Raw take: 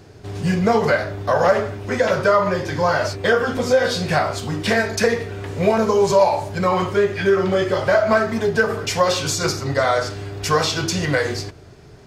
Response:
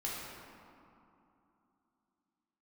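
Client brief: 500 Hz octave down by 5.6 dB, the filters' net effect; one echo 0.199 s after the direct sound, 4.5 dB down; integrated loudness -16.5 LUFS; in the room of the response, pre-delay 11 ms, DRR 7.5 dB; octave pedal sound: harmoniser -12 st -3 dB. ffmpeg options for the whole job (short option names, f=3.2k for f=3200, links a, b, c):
-filter_complex "[0:a]equalizer=f=500:t=o:g=-7,aecho=1:1:199:0.596,asplit=2[a][b];[1:a]atrim=start_sample=2205,adelay=11[c];[b][c]afir=irnorm=-1:irlink=0,volume=-10.5dB[d];[a][d]amix=inputs=2:normalize=0,asplit=2[e][f];[f]asetrate=22050,aresample=44100,atempo=2,volume=-3dB[g];[e][g]amix=inputs=2:normalize=0,volume=2dB"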